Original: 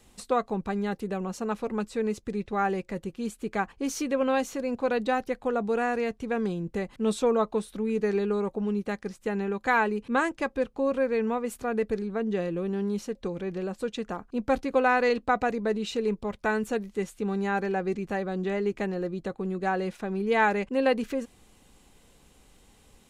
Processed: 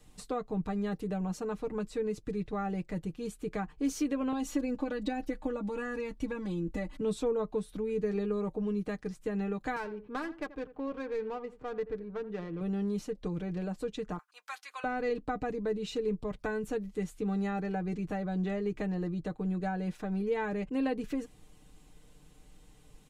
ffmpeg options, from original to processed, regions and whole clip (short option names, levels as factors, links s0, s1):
-filter_complex "[0:a]asettb=1/sr,asplit=3[s0][s1][s2];[s0]atrim=end=4.324[s3];[s1]atrim=start=4.32:end=7.01,asetpts=PTS-STARTPTS,afade=t=in:d=0.004:c=qsin,afade=t=out:st=2.686:d=0.004:c=qsin,bandreject=f=1400:w=24,acompressor=threshold=0.0398:ratio=3:attack=3.2:release=140:knee=1:detection=peak,aecho=1:1:3.5:0.99,atrim=end_sample=118629[s4];[s2]atrim=start=7.006[s5];[s3][s4]acrossfade=d=0.004:c1=hsin:c2=qsin[s6];[s6][s5]acrossfade=d=0.004:c1=qsin:c2=hsin,asettb=1/sr,asplit=3[s7][s8][s9];[s7]atrim=end=9.764[s10];[s8]atrim=start=9.76:end=12.61,asetpts=PTS-STARTPTS,afade=t=in:d=0.004:c=qsin,afade=t=out:st=2.846:d=0.004:c=qsin,lowshelf=f=430:g=-9,aecho=1:1:82|164:0.168|0.0285,atrim=end_sample=125685,adynamicsmooth=sensitivity=4:basefreq=1200[s11];[s9]atrim=start=12.606[s12];[s10][s11]acrossfade=d=0.004:c1=hsin:c2=qsin[s13];[s13][s12]acrossfade=d=0.004:c1=qsin:c2=hsin,asettb=1/sr,asplit=3[s14][s15][s16];[s14]atrim=end=14.184[s17];[s15]atrim=start=14.18:end=14.84,asetpts=PTS-STARTPTS,afade=t=in:d=0.004:c=qsin,afade=t=out:st=0.656:d=0.004:c=qsin,highpass=f=1100:w=0.5412,highpass=f=1100:w=1.3066,highshelf=f=5900:g=6.5[s18];[s16]atrim=start=14.836[s19];[s17][s18]acrossfade=d=0.004:c1=hsin:c2=qsin[s20];[s20][s19]acrossfade=d=0.004:c1=qsin:c2=hsin,lowshelf=f=240:g=8.5,aecho=1:1:6.6:0.68,acrossover=split=380[s21][s22];[s22]acompressor=threshold=0.0282:ratio=2.5[s23];[s21][s23]amix=inputs=2:normalize=0,volume=0.473"